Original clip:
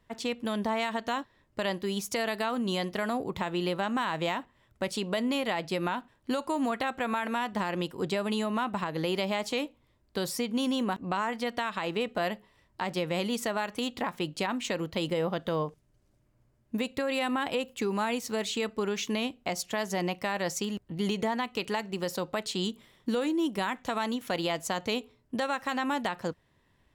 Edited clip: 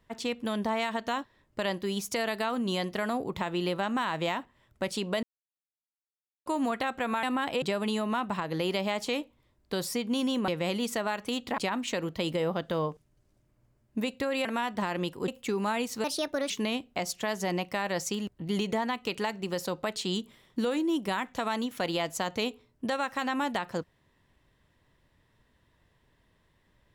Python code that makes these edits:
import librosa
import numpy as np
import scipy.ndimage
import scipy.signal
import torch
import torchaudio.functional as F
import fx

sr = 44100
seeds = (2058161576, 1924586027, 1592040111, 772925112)

y = fx.edit(x, sr, fx.silence(start_s=5.23, length_s=1.23),
    fx.swap(start_s=7.23, length_s=0.83, other_s=17.22, other_length_s=0.39),
    fx.cut(start_s=10.92, length_s=2.06),
    fx.cut(start_s=14.08, length_s=0.27),
    fx.speed_span(start_s=18.37, length_s=0.63, speed=1.37), tone=tone)